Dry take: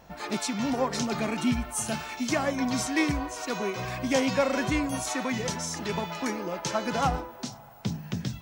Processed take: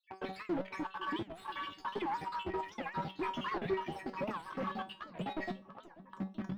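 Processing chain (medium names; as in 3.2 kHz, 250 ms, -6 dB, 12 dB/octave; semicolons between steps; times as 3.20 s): random holes in the spectrogram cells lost 74%; high-pass 98 Hz 12 dB/octave; band-stop 1.1 kHz, Q 9.5; de-hum 161.3 Hz, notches 7; tape speed +28%; in parallel at -4.5 dB: companded quantiser 2-bit; on the sum: saturation -27.5 dBFS, distortion -13 dB; distance through air 380 m; feedback comb 190 Hz, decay 0.27 s, harmonics all, mix 80%; on a send: filtered feedback delay 490 ms, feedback 61%, low-pass 1.1 kHz, level -17 dB; on the sum: warped record 78 rpm, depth 250 cents; trim +6 dB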